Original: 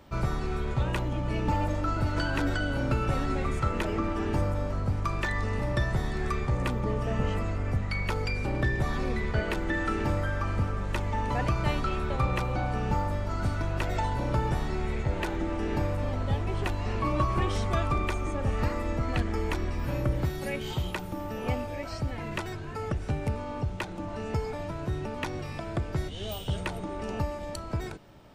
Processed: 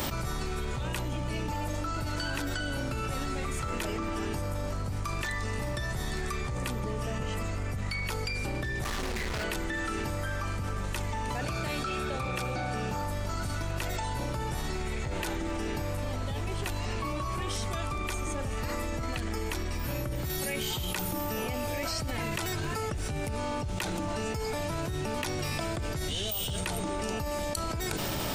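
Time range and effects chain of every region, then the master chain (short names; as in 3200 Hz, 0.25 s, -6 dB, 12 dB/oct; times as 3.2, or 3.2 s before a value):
8.84–9.44 notches 50/100/150/200/250/300/350/400 Hz + hard clip -32.5 dBFS + Doppler distortion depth 0.25 ms
11.4–13.03 notch comb 1000 Hz + Doppler distortion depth 0.12 ms
whole clip: pre-emphasis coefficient 0.8; fast leveller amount 100%; gain +3 dB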